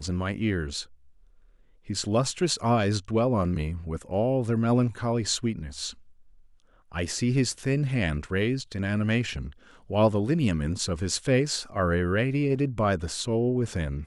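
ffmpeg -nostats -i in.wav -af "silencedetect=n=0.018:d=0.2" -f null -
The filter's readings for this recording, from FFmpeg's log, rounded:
silence_start: 0.83
silence_end: 1.90 | silence_duration: 1.06
silence_start: 5.91
silence_end: 6.92 | silence_duration: 1.00
silence_start: 9.49
silence_end: 9.90 | silence_duration: 0.41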